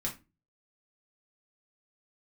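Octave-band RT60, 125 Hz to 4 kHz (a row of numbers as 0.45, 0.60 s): 0.50, 0.40, 0.30, 0.25, 0.25, 0.20 s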